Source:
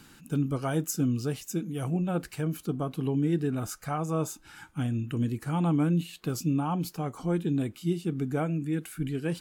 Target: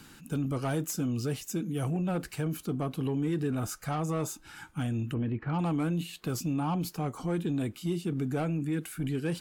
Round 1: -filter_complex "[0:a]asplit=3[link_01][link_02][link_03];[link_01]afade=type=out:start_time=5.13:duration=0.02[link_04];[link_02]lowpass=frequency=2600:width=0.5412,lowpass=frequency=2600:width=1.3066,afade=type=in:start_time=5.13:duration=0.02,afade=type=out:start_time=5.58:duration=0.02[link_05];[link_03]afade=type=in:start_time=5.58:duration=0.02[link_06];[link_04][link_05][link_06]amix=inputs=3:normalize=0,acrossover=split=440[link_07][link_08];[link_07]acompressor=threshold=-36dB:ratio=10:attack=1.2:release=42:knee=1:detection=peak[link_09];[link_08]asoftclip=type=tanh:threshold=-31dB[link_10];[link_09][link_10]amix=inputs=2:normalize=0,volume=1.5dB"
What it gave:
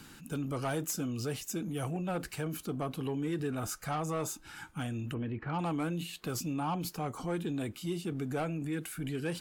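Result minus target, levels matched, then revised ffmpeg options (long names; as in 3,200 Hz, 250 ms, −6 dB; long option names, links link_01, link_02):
downward compressor: peak gain reduction +6.5 dB
-filter_complex "[0:a]asplit=3[link_01][link_02][link_03];[link_01]afade=type=out:start_time=5.13:duration=0.02[link_04];[link_02]lowpass=frequency=2600:width=0.5412,lowpass=frequency=2600:width=1.3066,afade=type=in:start_time=5.13:duration=0.02,afade=type=out:start_time=5.58:duration=0.02[link_05];[link_03]afade=type=in:start_time=5.58:duration=0.02[link_06];[link_04][link_05][link_06]amix=inputs=3:normalize=0,acrossover=split=440[link_07][link_08];[link_07]acompressor=threshold=-29dB:ratio=10:attack=1.2:release=42:knee=1:detection=peak[link_09];[link_08]asoftclip=type=tanh:threshold=-31dB[link_10];[link_09][link_10]amix=inputs=2:normalize=0,volume=1.5dB"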